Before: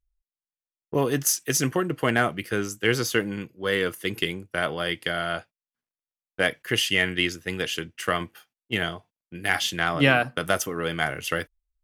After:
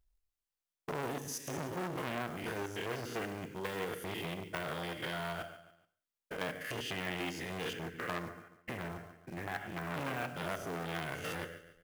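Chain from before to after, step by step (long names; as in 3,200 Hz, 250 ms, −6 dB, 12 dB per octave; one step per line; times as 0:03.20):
spectrum averaged block by block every 100 ms
de-essing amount 95%
0:07.73–0:09.94: Butterworth low-pass 2,300 Hz 36 dB per octave
downward compressor 2.5 to 1, threshold −36 dBFS, peak gain reduction 11 dB
floating-point word with a short mantissa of 2 bits
repeating echo 142 ms, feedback 39%, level −16 dB
reverb whose tail is shaped and stops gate 220 ms falling, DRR 10.5 dB
saturating transformer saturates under 2,100 Hz
level +2 dB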